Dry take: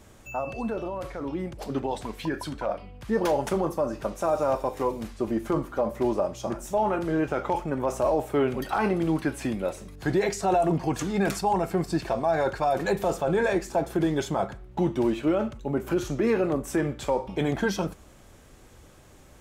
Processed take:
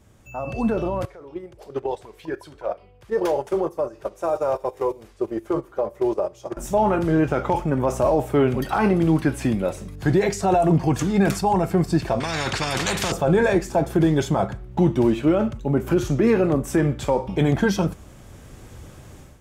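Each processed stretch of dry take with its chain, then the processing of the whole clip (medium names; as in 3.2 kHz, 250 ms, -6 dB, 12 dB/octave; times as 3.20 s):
1.05–6.57 s: resonant low shelf 310 Hz -6.5 dB, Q 3 + compression 1.5:1, threshold -38 dBFS + gate -33 dBFS, range -13 dB
12.20–13.12 s: high-pass 62 Hz + distance through air 63 m + spectrum-flattening compressor 4:1
whole clip: peaking EQ 110 Hz +7.5 dB 2 oct; band-stop 4.1 kHz, Q 28; level rider gain up to 13 dB; trim -6.5 dB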